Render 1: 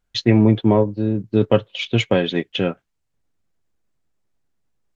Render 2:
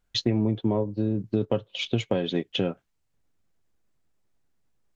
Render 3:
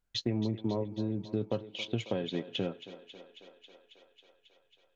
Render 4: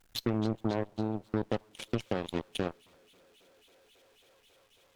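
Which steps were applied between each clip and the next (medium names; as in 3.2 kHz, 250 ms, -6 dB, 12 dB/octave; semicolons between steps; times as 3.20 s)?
dynamic bell 1.9 kHz, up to -7 dB, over -38 dBFS, Q 0.99; compression 4:1, threshold -22 dBFS, peak gain reduction 11 dB
thinning echo 272 ms, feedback 78%, high-pass 270 Hz, level -14 dB; trim -7.5 dB
jump at every zero crossing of -41.5 dBFS; Chebyshev shaper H 2 -15 dB, 3 -37 dB, 7 -16 dB, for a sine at -18.5 dBFS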